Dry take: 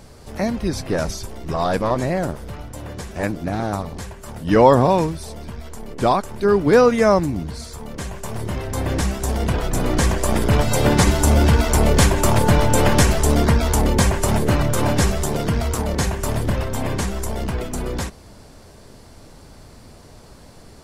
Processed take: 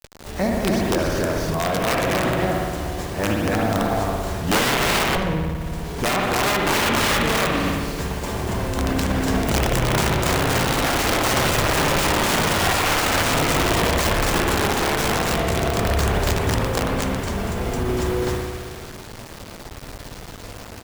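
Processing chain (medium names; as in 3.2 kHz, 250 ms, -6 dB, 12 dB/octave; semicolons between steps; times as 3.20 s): on a send: loudspeakers at several distances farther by 81 m -9 dB, 97 m -2 dB; on the sum: integer overflow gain 10.5 dB; 5.16–5.60 s: RIAA curve playback; spring tank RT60 1.5 s, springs 57 ms, chirp 70 ms, DRR 0 dB; word length cut 6-bit, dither none; peak limiter -11 dBFS, peak gain reduction 10.5 dB; sliding maximum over 3 samples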